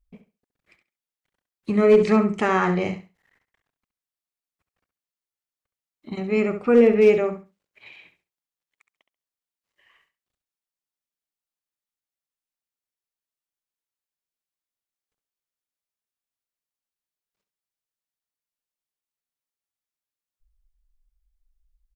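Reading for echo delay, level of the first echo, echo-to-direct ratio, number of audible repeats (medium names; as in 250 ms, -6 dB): 68 ms, -10.5 dB, -10.5 dB, 2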